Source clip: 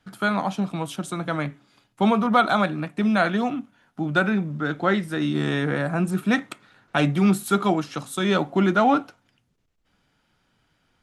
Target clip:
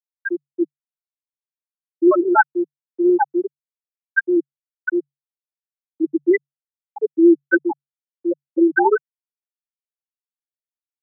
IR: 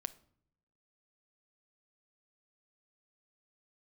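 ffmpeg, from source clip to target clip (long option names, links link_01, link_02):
-af "aecho=1:1:4.3:0.74,afftfilt=real='re*gte(hypot(re,im),1.26)':imag='im*gte(hypot(re,im),1.26)':win_size=1024:overlap=0.75,afreqshift=140,volume=3.5dB"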